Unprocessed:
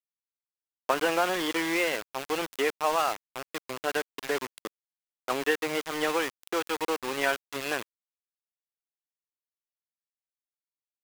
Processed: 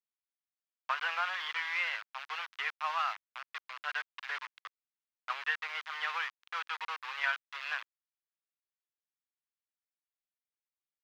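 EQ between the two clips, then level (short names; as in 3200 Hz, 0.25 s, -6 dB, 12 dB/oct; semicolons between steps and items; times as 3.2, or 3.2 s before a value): HPF 1100 Hz 24 dB/oct; air absorption 260 m; 0.0 dB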